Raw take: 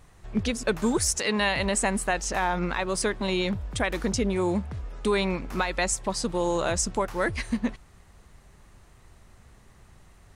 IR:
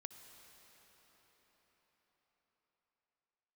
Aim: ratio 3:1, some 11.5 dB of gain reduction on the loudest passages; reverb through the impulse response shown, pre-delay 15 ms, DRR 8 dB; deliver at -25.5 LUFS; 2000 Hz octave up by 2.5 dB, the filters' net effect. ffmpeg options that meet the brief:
-filter_complex "[0:a]equalizer=f=2k:t=o:g=3,acompressor=threshold=-36dB:ratio=3,asplit=2[a][b];[1:a]atrim=start_sample=2205,adelay=15[c];[b][c]afir=irnorm=-1:irlink=0,volume=-3dB[d];[a][d]amix=inputs=2:normalize=0,volume=10.5dB"

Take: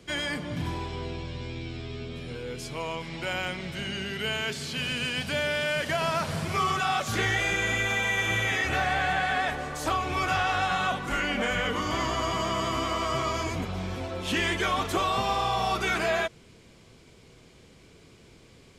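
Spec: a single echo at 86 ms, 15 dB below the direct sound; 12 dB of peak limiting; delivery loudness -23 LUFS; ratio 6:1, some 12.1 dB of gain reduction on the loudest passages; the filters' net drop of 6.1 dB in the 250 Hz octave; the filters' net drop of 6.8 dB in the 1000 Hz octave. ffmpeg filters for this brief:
-af "equalizer=f=250:t=o:g=-8.5,equalizer=f=1k:t=o:g=-9,acompressor=threshold=-39dB:ratio=6,alimiter=level_in=16.5dB:limit=-24dB:level=0:latency=1,volume=-16.5dB,aecho=1:1:86:0.178,volume=25.5dB"

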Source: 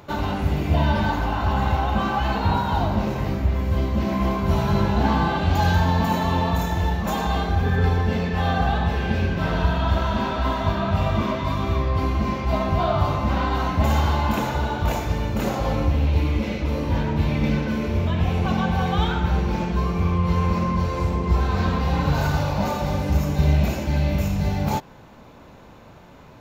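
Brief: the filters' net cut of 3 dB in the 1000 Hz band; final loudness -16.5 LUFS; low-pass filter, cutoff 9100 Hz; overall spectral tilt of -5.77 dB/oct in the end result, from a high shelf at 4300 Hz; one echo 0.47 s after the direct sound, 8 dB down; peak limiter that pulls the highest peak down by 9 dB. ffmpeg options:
-af "lowpass=9.1k,equalizer=f=1k:t=o:g=-4,highshelf=f=4.3k:g=6,alimiter=limit=-16dB:level=0:latency=1,aecho=1:1:470:0.398,volume=8dB"

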